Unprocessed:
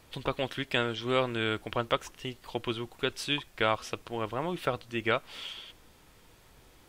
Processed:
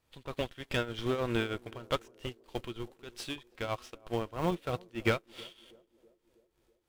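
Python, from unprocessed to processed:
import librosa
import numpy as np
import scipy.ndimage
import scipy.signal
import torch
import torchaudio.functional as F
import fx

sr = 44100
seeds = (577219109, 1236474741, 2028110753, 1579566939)

p1 = fx.schmitt(x, sr, flips_db=-27.0)
p2 = x + (p1 * librosa.db_to_amplitude(-5.5))
p3 = fx.leveller(p2, sr, passes=2)
p4 = fx.hpss(p3, sr, part='percussive', gain_db=-7)
p5 = fx.tremolo_shape(p4, sr, shape='triangle', hz=3.2, depth_pct=80)
p6 = p5 + fx.echo_banded(p5, sr, ms=323, feedback_pct=64, hz=380.0, wet_db=-15.5, dry=0)
y = fx.upward_expand(p6, sr, threshold_db=-43.0, expansion=1.5)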